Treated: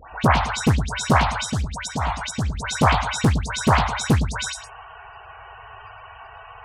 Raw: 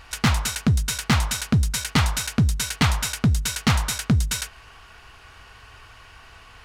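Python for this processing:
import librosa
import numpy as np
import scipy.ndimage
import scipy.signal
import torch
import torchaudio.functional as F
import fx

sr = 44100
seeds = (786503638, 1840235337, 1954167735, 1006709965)

p1 = fx.highpass(x, sr, hz=67.0, slope=6)
p2 = fx.peak_eq(p1, sr, hz=780.0, db=11.0, octaves=1.2)
p3 = fx.level_steps(p2, sr, step_db=12, at=(1.4, 2.55))
p4 = fx.dispersion(p3, sr, late='highs', ms=119.0, hz=1800.0)
p5 = fx.spec_topn(p4, sr, count=64)
p6 = p5 + fx.echo_single(p5, sr, ms=109, db=-10.5, dry=0)
p7 = fx.doppler_dist(p6, sr, depth_ms=0.65)
y = p7 * librosa.db_to_amplitude(2.0)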